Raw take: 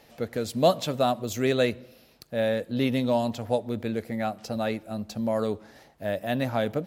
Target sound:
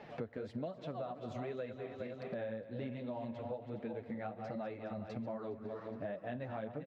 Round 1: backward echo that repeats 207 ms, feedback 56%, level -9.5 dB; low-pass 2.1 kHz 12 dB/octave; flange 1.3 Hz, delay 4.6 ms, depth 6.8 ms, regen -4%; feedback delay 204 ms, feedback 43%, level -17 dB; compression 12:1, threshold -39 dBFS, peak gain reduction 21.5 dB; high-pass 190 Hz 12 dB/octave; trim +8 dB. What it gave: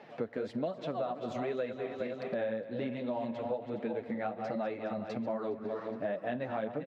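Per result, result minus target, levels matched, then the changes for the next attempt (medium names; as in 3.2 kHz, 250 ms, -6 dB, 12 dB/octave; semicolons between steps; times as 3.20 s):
compression: peak gain reduction -7.5 dB; 125 Hz band -6.5 dB
change: compression 12:1, threshold -47 dBFS, peak gain reduction 28.5 dB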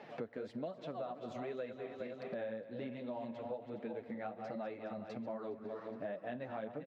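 125 Hz band -6.5 dB
change: high-pass 68 Hz 12 dB/octave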